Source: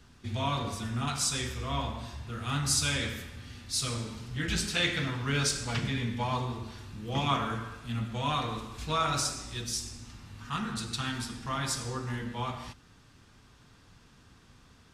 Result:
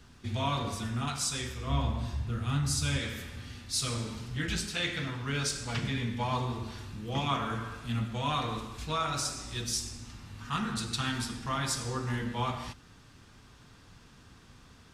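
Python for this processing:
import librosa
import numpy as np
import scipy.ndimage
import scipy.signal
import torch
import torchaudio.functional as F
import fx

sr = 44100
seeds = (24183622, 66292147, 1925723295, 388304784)

y = fx.low_shelf(x, sr, hz=280.0, db=10.0, at=(1.67, 2.99))
y = fx.rider(y, sr, range_db=4, speed_s=0.5)
y = F.gain(torch.from_numpy(y), -1.5).numpy()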